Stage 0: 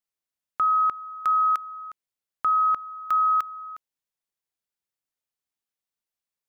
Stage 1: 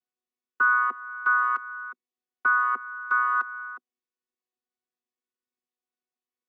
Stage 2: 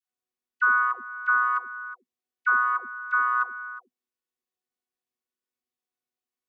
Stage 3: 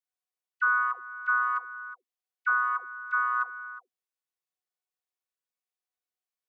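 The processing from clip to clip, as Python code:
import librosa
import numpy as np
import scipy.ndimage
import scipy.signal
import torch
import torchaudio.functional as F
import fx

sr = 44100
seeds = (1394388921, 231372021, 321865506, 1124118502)

y1 = fx.chord_vocoder(x, sr, chord='bare fifth', root=59)
y2 = fx.dispersion(y1, sr, late='lows', ms=110.0, hz=600.0)
y3 = scipy.signal.sosfilt(scipy.signal.butter(4, 470.0, 'highpass', fs=sr, output='sos'), y2)
y3 = y3 * 10.0 ** (-3.5 / 20.0)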